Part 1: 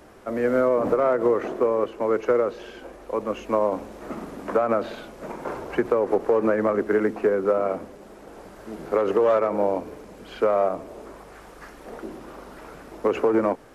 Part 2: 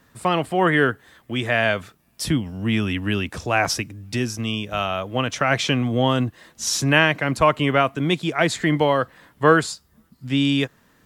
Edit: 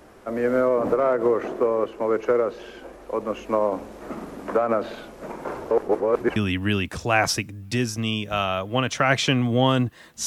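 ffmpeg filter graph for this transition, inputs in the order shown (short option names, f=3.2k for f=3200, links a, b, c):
-filter_complex "[0:a]apad=whole_dur=10.26,atrim=end=10.26,asplit=2[a][b];[a]atrim=end=5.712[c];[b]atrim=start=5.708:end=6.362,asetpts=PTS-STARTPTS,areverse[d];[1:a]atrim=start=2.768:end=6.67[e];[c][d]acrossfade=d=0.004:c1=hsin:c2=hsin[f];[f][e]acrossfade=d=0.004:c1=hsin:c2=hsin"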